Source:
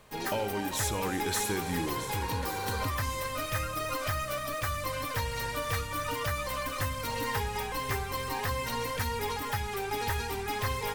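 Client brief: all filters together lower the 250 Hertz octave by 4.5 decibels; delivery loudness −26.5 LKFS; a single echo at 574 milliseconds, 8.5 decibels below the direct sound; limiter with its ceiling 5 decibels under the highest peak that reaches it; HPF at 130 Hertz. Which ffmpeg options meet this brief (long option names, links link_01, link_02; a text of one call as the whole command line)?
ffmpeg -i in.wav -af "highpass=130,equalizer=frequency=250:width_type=o:gain=-5.5,alimiter=level_in=0.5dB:limit=-24dB:level=0:latency=1,volume=-0.5dB,aecho=1:1:574:0.376,volume=7dB" out.wav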